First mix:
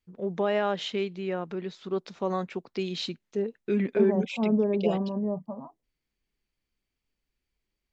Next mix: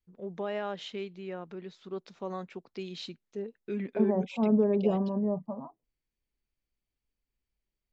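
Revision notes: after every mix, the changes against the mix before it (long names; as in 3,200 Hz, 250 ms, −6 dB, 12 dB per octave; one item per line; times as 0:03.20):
first voice −8.0 dB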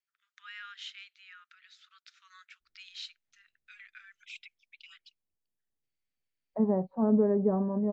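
first voice: add Butterworth high-pass 1,300 Hz 72 dB per octave
second voice: entry +2.60 s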